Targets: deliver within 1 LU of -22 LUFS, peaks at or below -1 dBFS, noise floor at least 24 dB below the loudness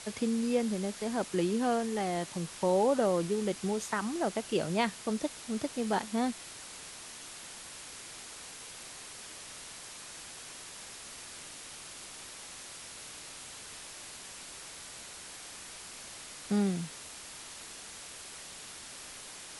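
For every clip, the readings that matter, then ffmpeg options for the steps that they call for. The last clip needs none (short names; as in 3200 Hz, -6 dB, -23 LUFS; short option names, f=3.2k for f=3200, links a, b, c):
noise floor -47 dBFS; noise floor target -60 dBFS; loudness -35.5 LUFS; peak -15.5 dBFS; loudness target -22.0 LUFS
-> -af "afftdn=nr=13:nf=-47"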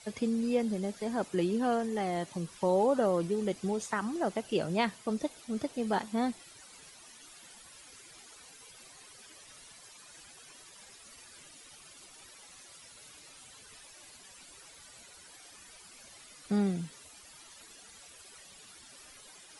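noise floor -54 dBFS; noise floor target -56 dBFS
-> -af "afftdn=nr=6:nf=-54"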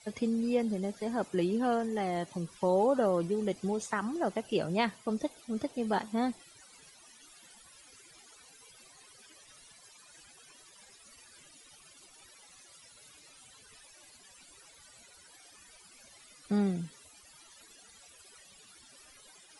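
noise floor -58 dBFS; loudness -32.0 LUFS; peak -15.5 dBFS; loudness target -22.0 LUFS
-> -af "volume=10dB"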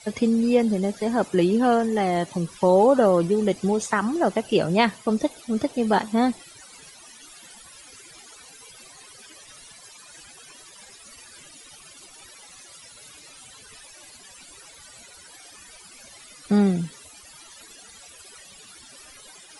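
loudness -22.0 LUFS; peak -5.5 dBFS; noise floor -48 dBFS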